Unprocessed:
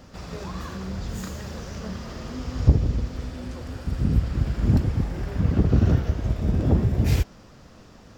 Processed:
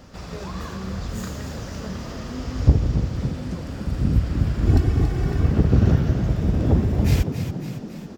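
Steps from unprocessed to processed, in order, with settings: 4.67–5.48 s: comb 2.7 ms, depth 78%; frequency-shifting echo 278 ms, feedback 59%, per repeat +34 Hz, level -9 dB; trim +1.5 dB

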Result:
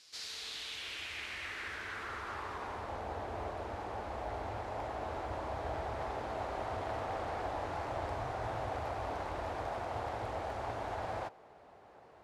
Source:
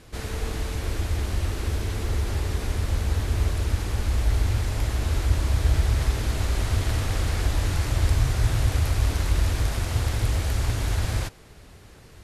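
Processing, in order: band-pass sweep 4.9 kHz -> 750 Hz, 0.13–3.05 s; trim +3.5 dB

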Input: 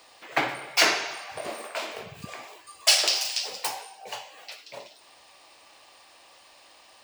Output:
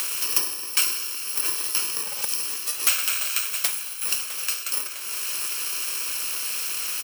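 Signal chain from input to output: bit-reversed sample order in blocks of 64 samples; high-pass 580 Hz 12 dB/octave; short-mantissa float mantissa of 4-bit; feedback delay 655 ms, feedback 25%, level -22 dB; three bands compressed up and down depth 100%; trim +7.5 dB

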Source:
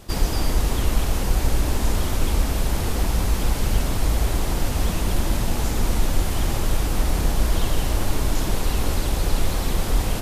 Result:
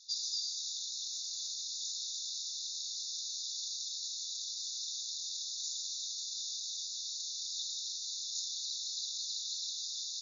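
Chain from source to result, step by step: FFT band-pass 3.5–7.1 kHz; 1.05–1.61 s: crackle 90 per s -52 dBFS

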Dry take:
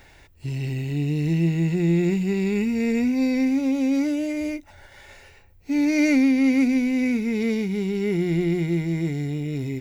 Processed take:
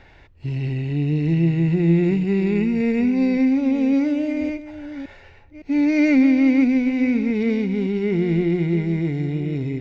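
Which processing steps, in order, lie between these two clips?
chunks repeated in reverse 562 ms, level -12.5 dB; distance through air 200 m; trim +3 dB

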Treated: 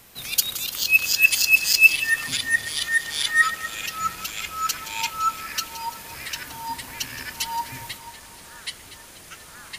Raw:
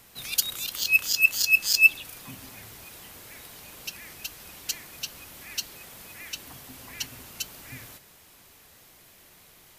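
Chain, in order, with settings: two-band feedback delay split 2.9 kHz, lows 88 ms, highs 170 ms, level -13.5 dB; ever faster or slower copies 780 ms, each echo -6 st, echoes 3, each echo -6 dB; trim +3.5 dB

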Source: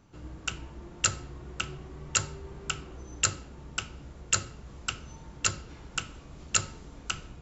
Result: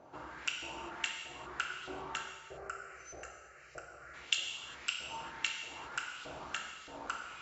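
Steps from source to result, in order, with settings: treble shelf 4.2 kHz +8 dB; compression 10:1, threshold -40 dBFS, peak gain reduction 25.5 dB; 2.23–4.14 s: static phaser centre 940 Hz, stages 6; LFO band-pass saw up 1.6 Hz 610–3600 Hz; gated-style reverb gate 430 ms falling, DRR 1 dB; trim +13.5 dB

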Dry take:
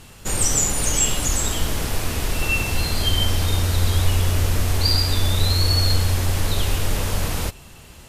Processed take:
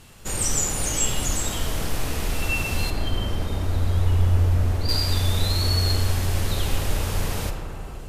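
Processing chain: 2.90–4.89 s: treble shelf 2 kHz -12 dB; reverberation RT60 4.1 s, pre-delay 10 ms, DRR 3.5 dB; trim -4.5 dB

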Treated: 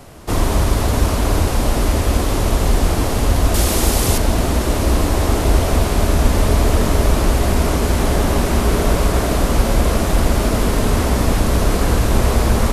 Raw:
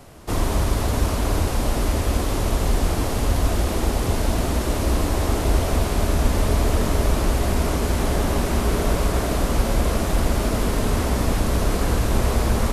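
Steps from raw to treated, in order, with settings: 3.54–4.18 s: treble shelf 3.6 kHz +10.5 dB; trim +5 dB

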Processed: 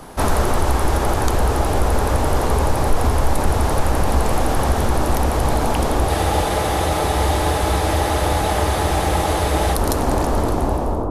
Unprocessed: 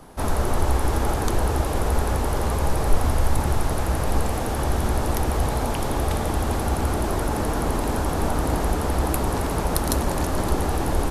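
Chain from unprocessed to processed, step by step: fade out at the end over 1.96 s; bass shelf 410 Hz -3.5 dB; on a send: bucket-brigade echo 547 ms, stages 4096, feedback 77%, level -6 dB; on the sum: gain riding within 4 dB 0.5 s; in parallel at +0.5 dB: peak limiter -14.5 dBFS, peak gain reduction 11 dB; on the sum: spectral freeze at 6.11 s, 3.63 s; loudspeaker Doppler distortion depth 0.15 ms

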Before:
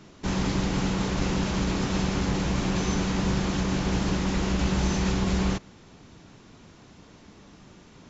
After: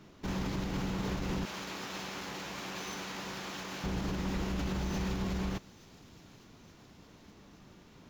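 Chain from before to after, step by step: median filter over 5 samples; 1.45–3.84 s: high-pass 1 kHz 6 dB/octave; peak limiter -20.5 dBFS, peak gain reduction 6.5 dB; feedback echo behind a high-pass 870 ms, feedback 61%, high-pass 3.6 kHz, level -16 dB; trim -5.5 dB

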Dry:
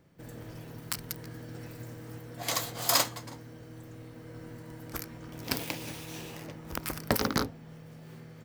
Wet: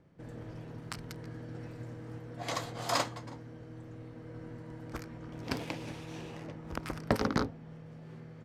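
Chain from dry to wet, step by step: low-pass 7.9 kHz 12 dB/octave; treble shelf 2.6 kHz -10 dB

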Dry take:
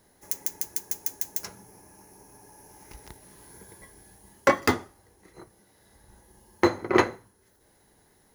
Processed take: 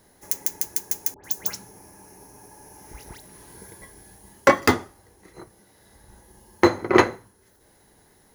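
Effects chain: 1.14–3.72 s: phase dispersion highs, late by 101 ms, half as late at 1.7 kHz; trim +4.5 dB

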